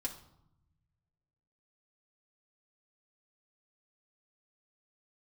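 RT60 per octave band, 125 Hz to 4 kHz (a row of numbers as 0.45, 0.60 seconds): 2.1, 1.3, 0.75, 0.80, 0.55, 0.55 seconds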